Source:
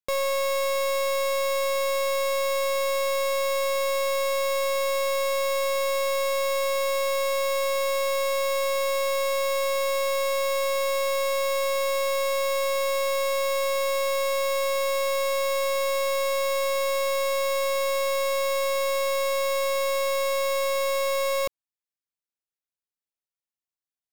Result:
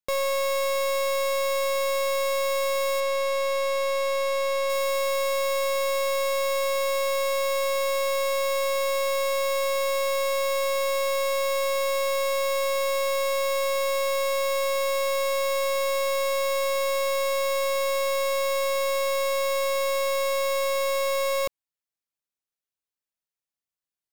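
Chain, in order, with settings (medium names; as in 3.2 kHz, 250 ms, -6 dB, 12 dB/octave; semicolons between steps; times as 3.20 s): 3.00–4.70 s: treble shelf 7.9 kHz -9 dB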